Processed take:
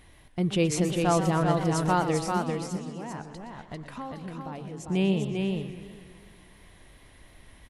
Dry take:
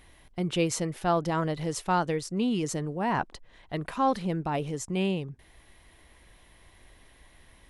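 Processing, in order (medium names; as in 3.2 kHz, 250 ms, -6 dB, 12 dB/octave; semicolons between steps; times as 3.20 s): peaking EQ 140 Hz +4 dB 2.3 oct; 2.37–4.88 s: compression, threshold -37 dBFS, peak gain reduction 16.5 dB; delay 397 ms -4 dB; modulated delay 124 ms, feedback 65%, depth 188 cents, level -11.5 dB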